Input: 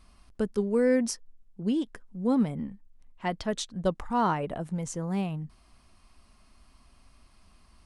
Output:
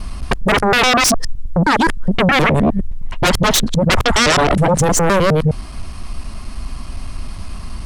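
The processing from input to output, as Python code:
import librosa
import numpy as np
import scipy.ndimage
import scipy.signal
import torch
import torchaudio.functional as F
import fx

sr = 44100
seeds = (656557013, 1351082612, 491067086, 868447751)

y = fx.local_reverse(x, sr, ms=104.0)
y = fx.low_shelf(y, sr, hz=190.0, db=9.0)
y = fx.fold_sine(y, sr, drive_db=18, ceiling_db=-12.5)
y = fx.hum_notches(y, sr, base_hz=50, count=2)
y = y * librosa.db_to_amplitude(3.0)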